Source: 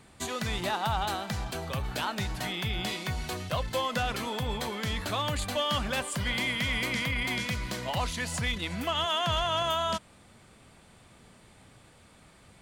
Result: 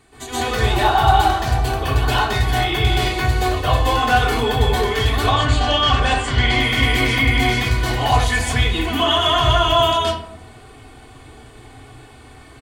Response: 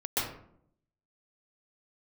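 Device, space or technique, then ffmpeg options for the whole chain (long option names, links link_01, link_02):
microphone above a desk: -filter_complex "[0:a]bandreject=frequency=5400:width=16,asettb=1/sr,asplit=3[link_01][link_02][link_03];[link_01]atrim=end=5.174[link_04];[link_02]atrim=start=5.17:end=6.51,asetpts=PTS-STARTPTS,afade=type=in:duration=0.004:curve=qsin,afade=type=out:start_time=1.336:duration=0.004:curve=qsin,lowpass=frequency=7200:width=0.5412,lowpass=frequency=7200:width=1.3066[link_05];[link_03]atrim=start=6.506[link_06];[link_04][link_05]acrossfade=duration=0.004:curve1=hsin:curve2=qsin[link_07];[link_07][link_06]acrossfade=duration=0.004:curve1=qsin:curve2=hsin,aecho=1:1:2.7:0.61[link_08];[1:a]atrim=start_sample=2205[link_09];[link_08][link_09]afir=irnorm=-1:irlink=0,volume=3.5dB"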